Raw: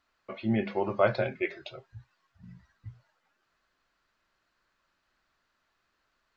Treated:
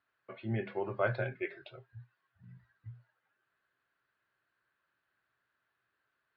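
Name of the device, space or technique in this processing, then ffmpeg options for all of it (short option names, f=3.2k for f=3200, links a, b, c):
guitar cabinet: -af "highpass=87,equalizer=f=120:t=q:w=4:g=10,equalizer=f=210:t=q:w=4:g=-4,equalizer=f=410:t=q:w=4:g=4,equalizer=f=1.6k:t=q:w=4:g=8,lowpass=f=3.9k:w=0.5412,lowpass=f=3.9k:w=1.3066,volume=-8.5dB"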